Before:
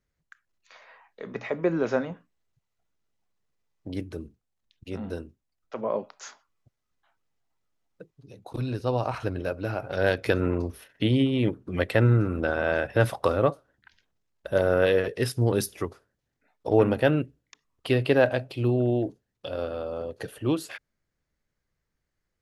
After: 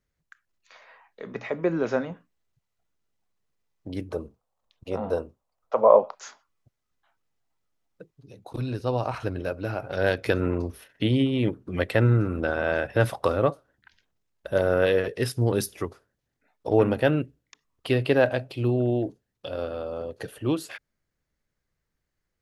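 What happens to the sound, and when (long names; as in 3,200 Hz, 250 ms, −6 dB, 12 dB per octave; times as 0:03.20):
0:04.09–0:06.15: flat-topped bell 760 Hz +13.5 dB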